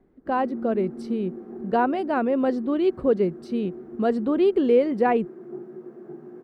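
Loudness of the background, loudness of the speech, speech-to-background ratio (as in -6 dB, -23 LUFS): -39.0 LUFS, -24.0 LUFS, 15.0 dB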